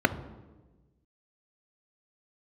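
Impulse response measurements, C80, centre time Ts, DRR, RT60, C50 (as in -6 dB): 16.0 dB, 7 ms, 11.0 dB, 1.2 s, 14.0 dB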